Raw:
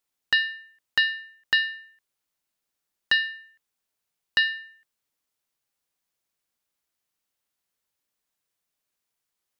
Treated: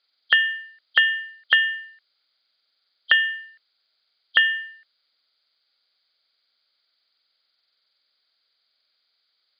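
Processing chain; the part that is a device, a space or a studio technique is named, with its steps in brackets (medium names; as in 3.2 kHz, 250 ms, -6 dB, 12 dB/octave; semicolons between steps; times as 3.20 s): hearing aid with frequency lowering (knee-point frequency compression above 3 kHz 4:1; compression 2.5:1, threshold -23 dBFS, peak gain reduction 5 dB; cabinet simulation 340–5700 Hz, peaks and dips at 360 Hz -5 dB, 610 Hz +3 dB, 950 Hz -6 dB, 1.4 kHz +8 dB, 2.2 kHz +6 dB); trim +5.5 dB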